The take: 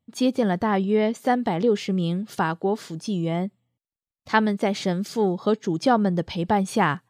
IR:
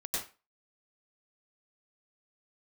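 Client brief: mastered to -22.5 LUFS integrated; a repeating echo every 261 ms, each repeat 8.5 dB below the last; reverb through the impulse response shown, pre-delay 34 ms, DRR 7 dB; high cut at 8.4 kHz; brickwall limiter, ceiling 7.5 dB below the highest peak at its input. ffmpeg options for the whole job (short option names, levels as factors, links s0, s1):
-filter_complex "[0:a]lowpass=8400,alimiter=limit=0.188:level=0:latency=1,aecho=1:1:261|522|783|1044:0.376|0.143|0.0543|0.0206,asplit=2[s0][s1];[1:a]atrim=start_sample=2205,adelay=34[s2];[s1][s2]afir=irnorm=-1:irlink=0,volume=0.316[s3];[s0][s3]amix=inputs=2:normalize=0,volume=1.19"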